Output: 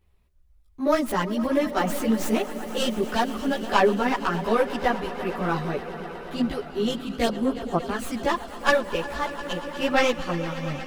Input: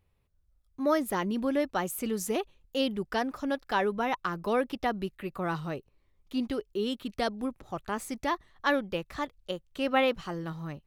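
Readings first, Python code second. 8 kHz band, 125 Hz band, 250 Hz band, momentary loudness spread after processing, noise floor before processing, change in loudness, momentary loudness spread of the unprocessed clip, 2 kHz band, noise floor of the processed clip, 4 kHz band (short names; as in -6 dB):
+4.5 dB, +7.0 dB, +6.0 dB, 8 LU, -70 dBFS, +6.0 dB, 9 LU, +6.5 dB, -57 dBFS, +6.0 dB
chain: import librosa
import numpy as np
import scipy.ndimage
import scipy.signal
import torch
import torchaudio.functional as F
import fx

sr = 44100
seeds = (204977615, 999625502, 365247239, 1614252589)

y = fx.tracing_dist(x, sr, depth_ms=0.096)
y = fx.echo_swell(y, sr, ms=118, loudest=5, wet_db=-17.5)
y = fx.chorus_voices(y, sr, voices=6, hz=1.1, base_ms=15, depth_ms=3.0, mix_pct=60)
y = y * librosa.db_to_amplitude(8.0)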